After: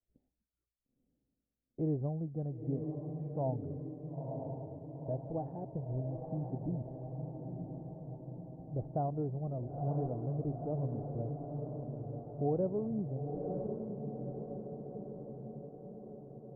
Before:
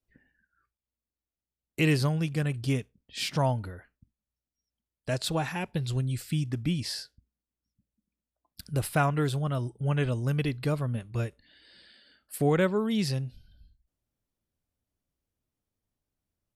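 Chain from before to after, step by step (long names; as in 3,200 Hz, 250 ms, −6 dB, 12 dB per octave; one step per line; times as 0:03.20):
Chebyshev low-pass filter 730 Hz, order 4
parametric band 150 Hz −4 dB 2.8 octaves
on a send: feedback delay with all-pass diffusion 953 ms, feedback 63%, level −4.5 dB
on the sum: level −5 dB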